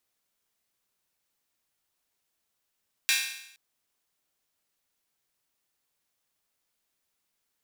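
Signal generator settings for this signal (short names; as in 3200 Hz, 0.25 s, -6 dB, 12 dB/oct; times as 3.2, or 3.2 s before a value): open hi-hat length 0.47 s, high-pass 2100 Hz, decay 0.77 s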